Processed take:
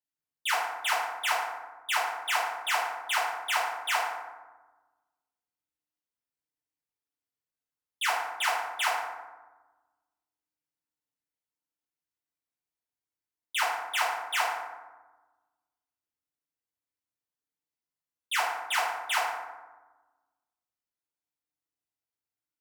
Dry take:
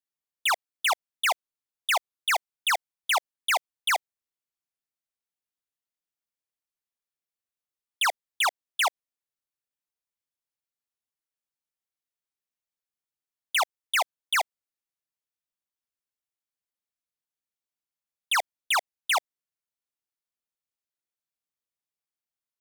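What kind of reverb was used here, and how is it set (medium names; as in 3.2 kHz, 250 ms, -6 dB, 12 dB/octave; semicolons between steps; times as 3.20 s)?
FDN reverb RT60 1.2 s, low-frequency decay 1.5×, high-frequency decay 0.45×, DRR -8 dB; trim -10 dB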